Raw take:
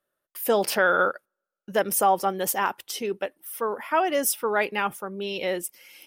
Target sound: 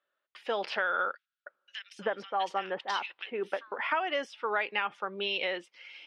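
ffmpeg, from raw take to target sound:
ffmpeg -i in.wav -filter_complex "[0:a]dynaudnorm=framelen=210:gausssize=9:maxgain=5.5dB,highpass=frequency=1400:poles=1,acompressor=threshold=-31dB:ratio=6,lowpass=frequency=3700:width=0.5412,lowpass=frequency=3700:width=1.3066,asettb=1/sr,asplit=3[link_01][link_02][link_03];[link_01]atrim=end=1.154[link_04];[link_02]atrim=start=1.15:end=3.72,asetpts=PTS-STARTPTS,afade=type=in:duration=0.004:curve=qsin,afade=type=out:start_time=2.566:duration=0.004:curve=qsin,acrossover=split=2100[link_05][link_06];[link_05]adelay=310[link_07];[link_07][link_06]amix=inputs=2:normalize=0,atrim=end_sample=113337[link_08];[link_03]atrim=start=3.716[link_09];[link_04][link_08]acrossfade=duration=0.004:curve1=hsin:curve2=qsin[link_10];[link_10][link_09]acrossfade=duration=0.004:curve1=qsin:curve2=hsin,volume=4dB" out.wav

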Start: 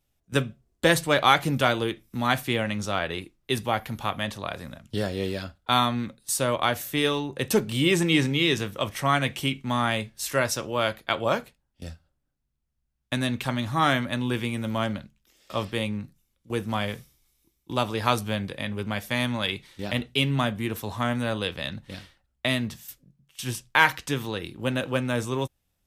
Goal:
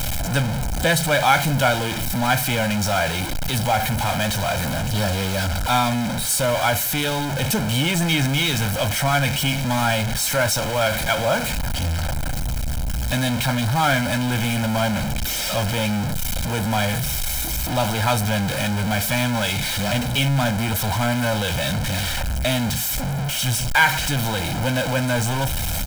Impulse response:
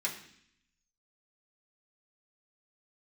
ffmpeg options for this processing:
-af "aeval=exprs='val(0)+0.5*0.126*sgn(val(0))':channel_layout=same,aecho=1:1:1.3:0.75,volume=-2.5dB"

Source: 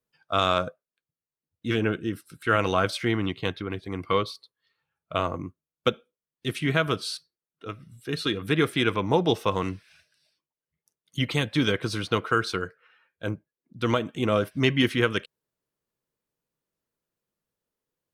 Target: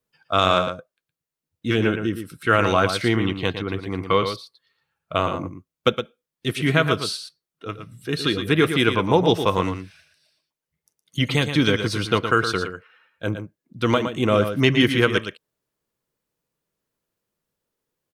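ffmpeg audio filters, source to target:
ffmpeg -i in.wav -af "aecho=1:1:115:0.376,volume=4.5dB" out.wav

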